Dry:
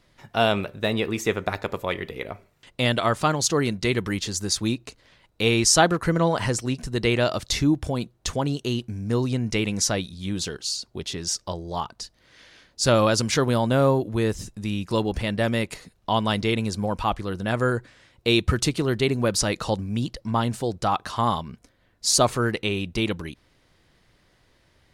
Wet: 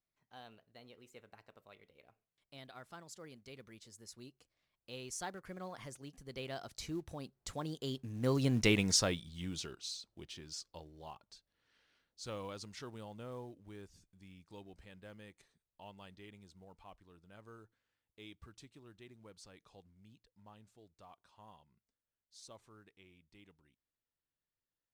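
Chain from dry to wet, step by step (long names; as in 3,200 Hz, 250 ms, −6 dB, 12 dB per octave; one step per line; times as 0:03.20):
source passing by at 0:08.66, 33 m/s, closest 10 metres
low-shelf EQ 330 Hz −2 dB
in parallel at −7 dB: floating-point word with a short mantissa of 2 bits
on the sum: level −6.5 dB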